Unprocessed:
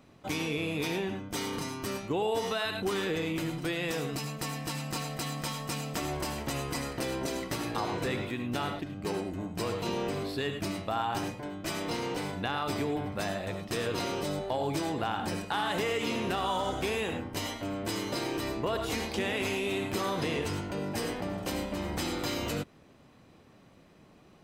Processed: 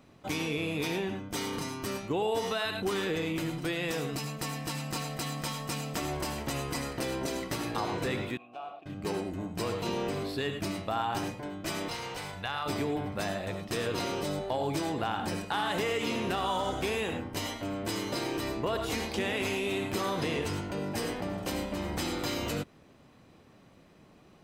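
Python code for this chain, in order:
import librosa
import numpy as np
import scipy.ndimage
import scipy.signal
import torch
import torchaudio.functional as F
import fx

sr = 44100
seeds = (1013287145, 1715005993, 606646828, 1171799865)

y = fx.vowel_filter(x, sr, vowel='a', at=(8.37, 8.86))
y = fx.peak_eq(y, sr, hz=280.0, db=-14.0, octaves=1.5, at=(11.88, 12.66))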